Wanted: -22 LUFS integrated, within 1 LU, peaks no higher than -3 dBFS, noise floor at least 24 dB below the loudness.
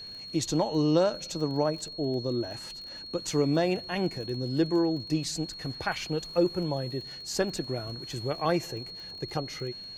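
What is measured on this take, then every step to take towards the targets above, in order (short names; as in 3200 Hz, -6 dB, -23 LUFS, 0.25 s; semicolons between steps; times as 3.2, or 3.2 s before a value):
ticks 22/s; steady tone 4300 Hz; tone level -40 dBFS; loudness -30.0 LUFS; peak -11.5 dBFS; loudness target -22.0 LUFS
-> de-click; notch 4300 Hz, Q 30; gain +8 dB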